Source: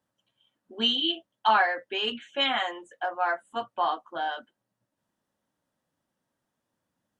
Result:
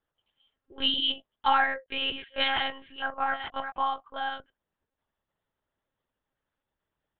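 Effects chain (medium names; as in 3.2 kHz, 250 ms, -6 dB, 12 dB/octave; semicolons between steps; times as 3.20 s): 1.60–3.71 s: chunks repeated in reverse 471 ms, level -8 dB; monotone LPC vocoder at 8 kHz 270 Hz; bass shelf 460 Hz -6.5 dB; band-stop 720 Hz, Q 17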